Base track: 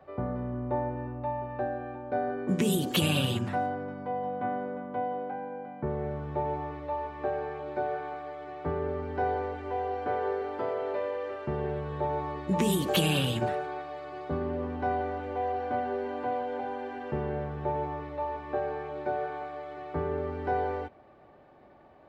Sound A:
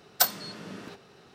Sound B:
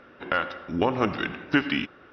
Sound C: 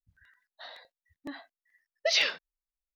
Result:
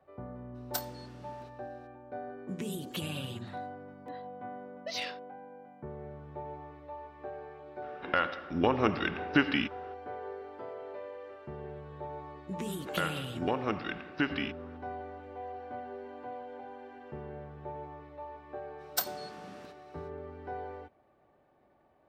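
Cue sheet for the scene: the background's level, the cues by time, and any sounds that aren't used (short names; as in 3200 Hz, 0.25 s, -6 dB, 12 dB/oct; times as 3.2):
base track -11 dB
0.54 add A -13.5 dB, fades 0.02 s
2.81 add C -11 dB + soft clip -16.5 dBFS
7.82 add B -3 dB
12.66 add B -8 dB
18.77 add A -8.5 dB, fades 0.05 s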